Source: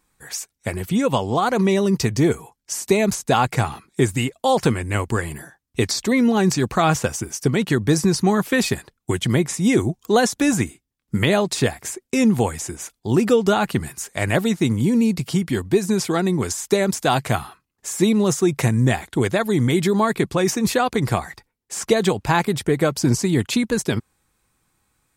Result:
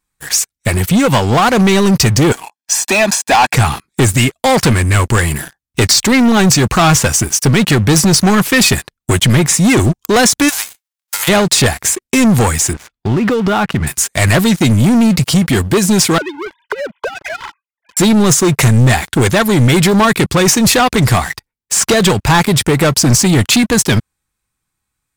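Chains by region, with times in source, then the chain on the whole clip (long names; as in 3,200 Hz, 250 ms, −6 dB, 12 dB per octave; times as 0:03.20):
0:02.32–0:03.54: high-pass filter 290 Hz 24 dB per octave + high-shelf EQ 6,900 Hz −10.5 dB + comb filter 1.2 ms, depth 79%
0:10.48–0:11.27: spectral envelope flattened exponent 0.3 + high-pass filter 620 Hz 24 dB per octave + downward compressor, threshold −32 dBFS
0:12.73–0:13.87: low-pass filter 2,600 Hz + downward compressor 4 to 1, threshold −22 dBFS
0:16.18–0:17.97: three sine waves on the formant tracks + downward compressor 16 to 1, threshold −31 dBFS + comb filter 2 ms
whole clip: leveller curve on the samples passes 3; parametric band 440 Hz −6.5 dB 2.5 octaves; leveller curve on the samples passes 1; level +2 dB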